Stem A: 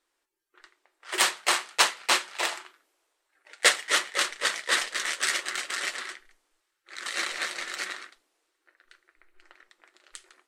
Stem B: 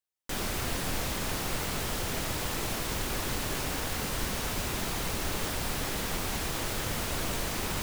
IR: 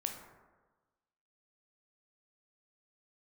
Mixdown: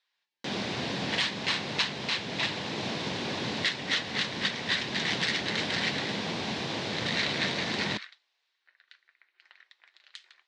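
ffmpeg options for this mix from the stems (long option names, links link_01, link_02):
-filter_complex "[0:a]highpass=1200,volume=1.5dB[link_01];[1:a]adelay=150,volume=2dB[link_02];[link_01][link_02]amix=inputs=2:normalize=0,highpass=frequency=120:width=0.5412,highpass=frequency=120:width=1.3066,equalizer=frequency=210:width_type=q:width=4:gain=4,equalizer=frequency=1300:width_type=q:width=4:gain=-8,equalizer=frequency=3800:width_type=q:width=4:gain=4,lowpass=frequency=5000:width=0.5412,lowpass=frequency=5000:width=1.3066,alimiter=limit=-15dB:level=0:latency=1:release=429"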